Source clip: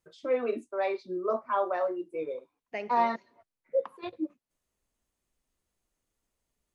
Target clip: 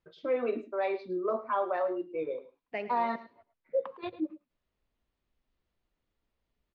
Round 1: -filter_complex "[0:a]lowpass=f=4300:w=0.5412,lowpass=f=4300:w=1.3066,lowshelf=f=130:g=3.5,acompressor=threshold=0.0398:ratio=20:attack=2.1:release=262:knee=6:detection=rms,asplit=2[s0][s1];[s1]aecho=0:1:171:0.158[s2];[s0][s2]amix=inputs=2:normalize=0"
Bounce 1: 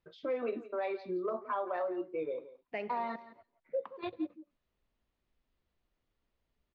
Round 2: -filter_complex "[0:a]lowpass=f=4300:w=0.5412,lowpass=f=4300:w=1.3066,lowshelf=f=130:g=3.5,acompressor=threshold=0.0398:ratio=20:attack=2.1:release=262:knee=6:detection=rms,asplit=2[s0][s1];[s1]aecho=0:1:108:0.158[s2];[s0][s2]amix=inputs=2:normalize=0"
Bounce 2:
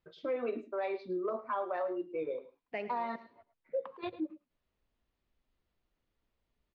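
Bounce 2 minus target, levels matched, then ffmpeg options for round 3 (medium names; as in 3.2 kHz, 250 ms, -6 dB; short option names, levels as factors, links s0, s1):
compression: peak gain reduction +7 dB
-filter_complex "[0:a]lowpass=f=4300:w=0.5412,lowpass=f=4300:w=1.3066,lowshelf=f=130:g=3.5,acompressor=threshold=0.0944:ratio=20:attack=2.1:release=262:knee=6:detection=rms,asplit=2[s0][s1];[s1]aecho=0:1:108:0.158[s2];[s0][s2]amix=inputs=2:normalize=0"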